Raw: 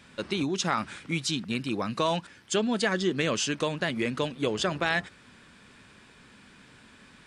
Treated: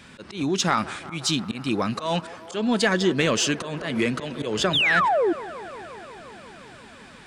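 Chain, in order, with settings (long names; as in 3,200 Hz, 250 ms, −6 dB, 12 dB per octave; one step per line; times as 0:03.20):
volume swells 174 ms
0:04.73–0:05.33: sound drawn into the spectrogram fall 310–3,900 Hz −26 dBFS
in parallel at −9 dB: soft clipping −27.5 dBFS, distortion −10 dB
on the sum: delay with a band-pass on its return 177 ms, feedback 80%, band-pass 770 Hz, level −16 dB
0:03.81–0:04.75: multiband upward and downward compressor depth 40%
level +4 dB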